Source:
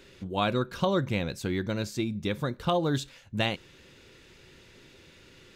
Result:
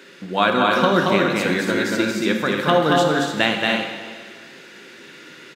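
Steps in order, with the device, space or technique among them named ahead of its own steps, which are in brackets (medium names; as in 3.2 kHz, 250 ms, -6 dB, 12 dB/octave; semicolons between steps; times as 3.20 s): stadium PA (high-pass 180 Hz 24 dB/octave; peaking EQ 1.6 kHz +7.5 dB 0.76 oct; loudspeakers at several distances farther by 78 m -3 dB, 98 m -6 dB; reverberation RT60 1.8 s, pre-delay 11 ms, DRR 4 dB); trim +7 dB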